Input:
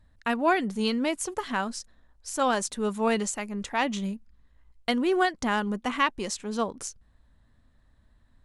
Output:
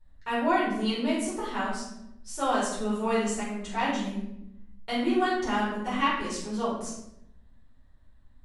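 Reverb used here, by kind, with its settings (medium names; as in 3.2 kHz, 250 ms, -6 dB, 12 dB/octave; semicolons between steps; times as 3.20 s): simulated room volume 230 m³, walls mixed, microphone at 4.5 m; trim -14 dB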